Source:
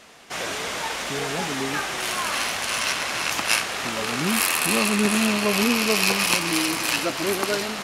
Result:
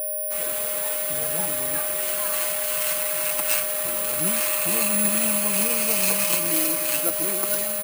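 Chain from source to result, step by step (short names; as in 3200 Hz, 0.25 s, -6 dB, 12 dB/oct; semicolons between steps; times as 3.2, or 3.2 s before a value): comb 6 ms, depth 79%; whine 610 Hz -22 dBFS; careless resampling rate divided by 4×, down filtered, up zero stuff; gain -9 dB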